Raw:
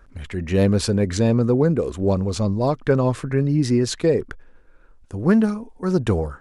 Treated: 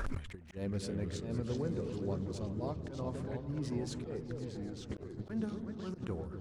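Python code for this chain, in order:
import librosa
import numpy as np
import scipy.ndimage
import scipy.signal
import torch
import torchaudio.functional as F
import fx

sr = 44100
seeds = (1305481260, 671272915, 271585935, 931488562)

p1 = x + fx.echo_opening(x, sr, ms=127, hz=200, octaves=2, feedback_pct=70, wet_db=-6, dry=0)
p2 = fx.auto_swell(p1, sr, attack_ms=138.0)
p3 = fx.echo_pitch(p2, sr, ms=163, semitones=-3, count=3, db_per_echo=-6.0)
p4 = np.sign(p3) * np.maximum(np.abs(p3) - 10.0 ** (-32.0 / 20.0), 0.0)
p5 = p3 + (p4 * 10.0 ** (-9.0 / 20.0))
p6 = fx.gate_flip(p5, sr, shuts_db=-16.0, range_db=-40)
p7 = 10.0 ** (-25.0 / 20.0) * (np.abs((p6 / 10.0 ** (-25.0 / 20.0) + 3.0) % 4.0 - 2.0) - 1.0)
p8 = fx.over_compress(p7, sr, threshold_db=-51.0, ratio=-1.0)
y = p8 * 10.0 ** (12.0 / 20.0)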